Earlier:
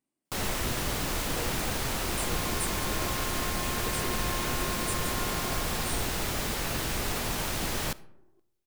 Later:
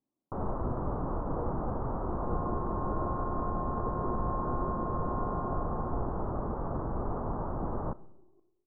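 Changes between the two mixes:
second sound: send +10.5 dB
master: add Butterworth low-pass 1,200 Hz 48 dB per octave

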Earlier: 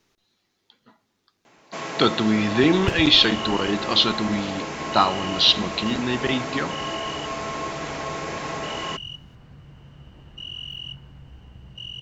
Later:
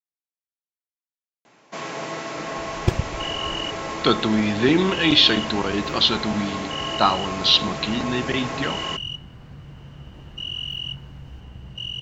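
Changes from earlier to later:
speech: entry +2.05 s
second sound +5.0 dB

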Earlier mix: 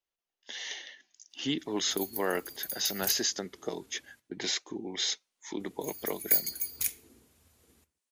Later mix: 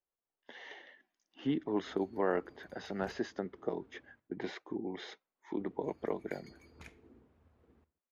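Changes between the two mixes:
background: add high-shelf EQ 12,000 Hz −5 dB
master: add low-pass filter 1,300 Hz 12 dB per octave

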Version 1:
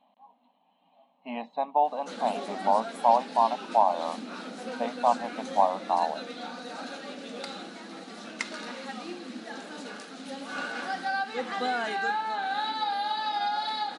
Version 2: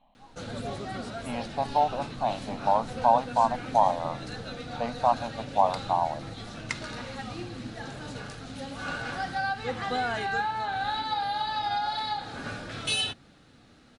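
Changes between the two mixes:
background: entry −1.70 s
master: remove linear-phase brick-wall high-pass 180 Hz

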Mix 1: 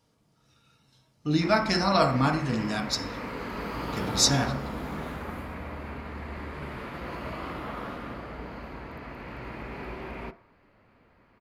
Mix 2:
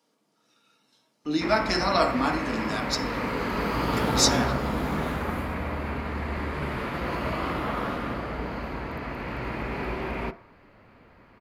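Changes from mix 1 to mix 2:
speech: add high-pass filter 220 Hz 24 dB per octave
background +7.0 dB

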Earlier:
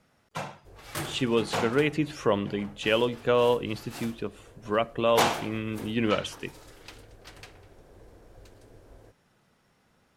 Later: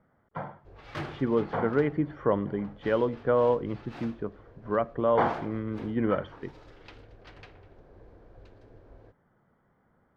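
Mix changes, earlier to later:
speech: add Savitzky-Golay smoothing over 41 samples
master: add high-frequency loss of the air 240 metres

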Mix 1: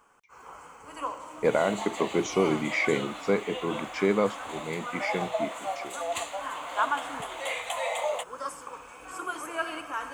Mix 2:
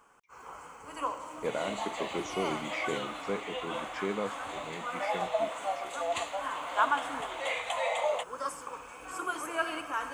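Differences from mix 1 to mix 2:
speech −9.5 dB
second sound: add high-frequency loss of the air 60 metres

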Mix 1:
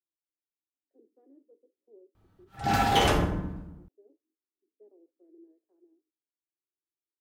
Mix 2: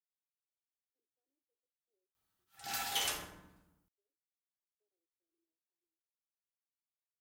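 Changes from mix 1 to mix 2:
speech −11.5 dB
master: add first-order pre-emphasis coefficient 0.97

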